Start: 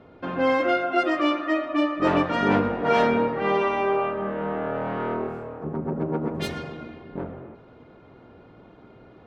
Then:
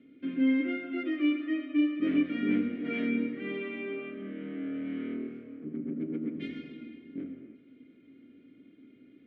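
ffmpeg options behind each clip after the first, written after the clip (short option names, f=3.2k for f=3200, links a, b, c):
-filter_complex "[0:a]acrossover=split=2700[a][b];[b]acompressor=threshold=-48dB:ratio=4:attack=1:release=60[c];[a][c]amix=inputs=2:normalize=0,asplit=3[d][e][f];[d]bandpass=f=270:t=q:w=8,volume=0dB[g];[e]bandpass=f=2.29k:t=q:w=8,volume=-6dB[h];[f]bandpass=f=3.01k:t=q:w=8,volume=-9dB[i];[g][h][i]amix=inputs=3:normalize=0,volume=4dB"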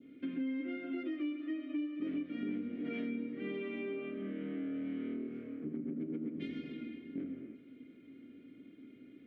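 -af "adynamicequalizer=threshold=0.00282:dfrequency=1800:dqfactor=0.83:tfrequency=1800:tqfactor=0.83:attack=5:release=100:ratio=0.375:range=3:mode=cutabove:tftype=bell,acompressor=threshold=-37dB:ratio=5,volume=1dB"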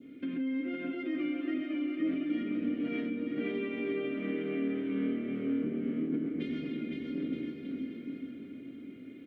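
-af "alimiter=level_in=9dB:limit=-24dB:level=0:latency=1:release=93,volume=-9dB,aecho=1:1:510|918|1244|1506|1714:0.631|0.398|0.251|0.158|0.1,volume=5.5dB"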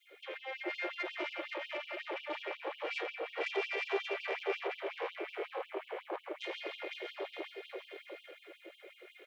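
-af "aeval=exprs='(tanh(44.7*val(0)+0.65)-tanh(0.65))/44.7':c=same,afftfilt=real='re*gte(b*sr/1024,320*pow(2700/320,0.5+0.5*sin(2*PI*5.5*pts/sr)))':imag='im*gte(b*sr/1024,320*pow(2700/320,0.5+0.5*sin(2*PI*5.5*pts/sr)))':win_size=1024:overlap=0.75,volume=10dB"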